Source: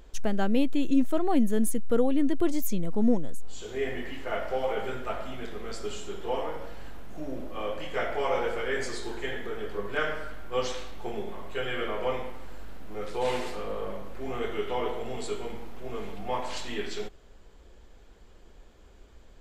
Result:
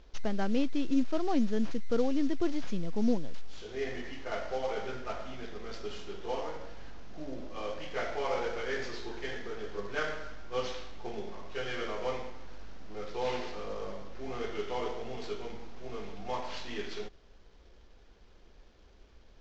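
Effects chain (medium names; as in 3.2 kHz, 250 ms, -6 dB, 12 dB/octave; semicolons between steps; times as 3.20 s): CVSD coder 32 kbps; trim -4.5 dB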